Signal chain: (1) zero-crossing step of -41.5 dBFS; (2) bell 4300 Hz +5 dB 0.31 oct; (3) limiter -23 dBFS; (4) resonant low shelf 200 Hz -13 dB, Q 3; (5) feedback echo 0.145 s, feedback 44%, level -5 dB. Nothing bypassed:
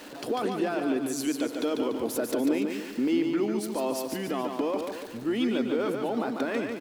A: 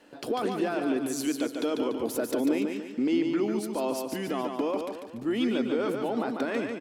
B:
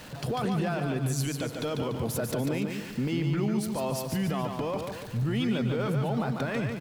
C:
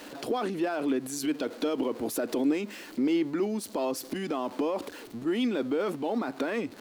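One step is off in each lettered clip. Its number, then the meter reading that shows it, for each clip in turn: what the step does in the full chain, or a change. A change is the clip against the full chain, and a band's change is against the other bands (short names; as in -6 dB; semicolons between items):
1, distortion -25 dB; 4, 125 Hz band +16.0 dB; 5, echo-to-direct -4.0 dB to none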